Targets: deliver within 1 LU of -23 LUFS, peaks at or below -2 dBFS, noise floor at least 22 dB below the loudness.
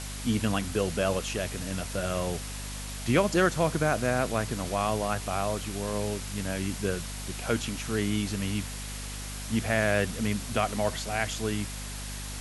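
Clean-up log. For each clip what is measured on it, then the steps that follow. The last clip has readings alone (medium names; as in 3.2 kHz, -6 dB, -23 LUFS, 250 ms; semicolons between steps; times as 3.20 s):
hum 50 Hz; highest harmonic 250 Hz; hum level -36 dBFS; noise floor -37 dBFS; noise floor target -52 dBFS; loudness -29.5 LUFS; peak level -11.0 dBFS; loudness target -23.0 LUFS
-> de-hum 50 Hz, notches 5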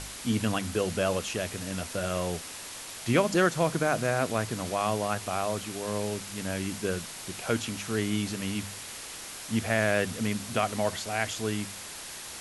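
hum not found; noise floor -42 dBFS; noise floor target -52 dBFS
-> noise reduction 10 dB, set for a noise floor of -42 dBFS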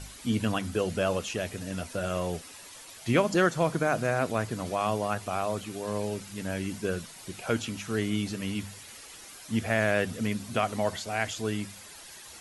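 noise floor -47 dBFS; noise floor target -52 dBFS
-> noise reduction 6 dB, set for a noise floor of -47 dBFS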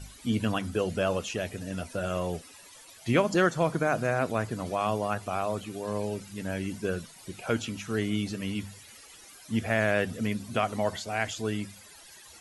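noise floor -51 dBFS; noise floor target -52 dBFS
-> noise reduction 6 dB, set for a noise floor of -51 dBFS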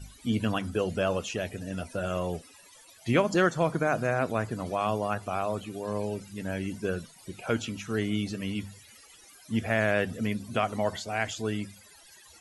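noise floor -54 dBFS; loudness -30.0 LUFS; peak level -11.0 dBFS; loudness target -23.0 LUFS
-> trim +7 dB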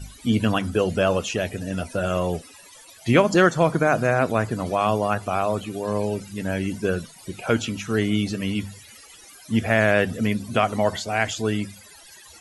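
loudness -23.0 LUFS; peak level -4.0 dBFS; noise floor -47 dBFS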